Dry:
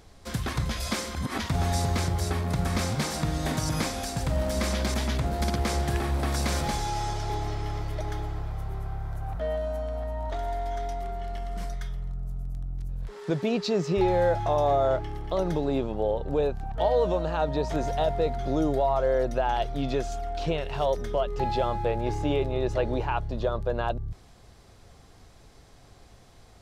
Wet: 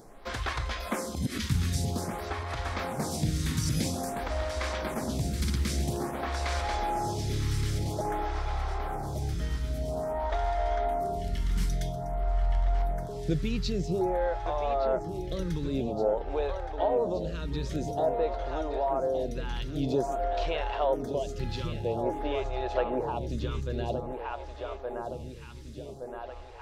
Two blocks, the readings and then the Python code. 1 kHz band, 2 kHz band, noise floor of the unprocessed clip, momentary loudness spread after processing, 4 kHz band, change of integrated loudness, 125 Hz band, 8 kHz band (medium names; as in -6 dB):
-2.5 dB, -2.5 dB, -53 dBFS, 7 LU, -3.0 dB, -3.0 dB, -2.0 dB, -2.5 dB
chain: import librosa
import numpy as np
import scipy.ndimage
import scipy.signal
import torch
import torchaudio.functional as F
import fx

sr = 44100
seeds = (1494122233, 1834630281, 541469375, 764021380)

y = fx.rider(x, sr, range_db=10, speed_s=0.5)
y = fx.echo_feedback(y, sr, ms=1170, feedback_pct=59, wet_db=-8)
y = fx.stagger_phaser(y, sr, hz=0.5)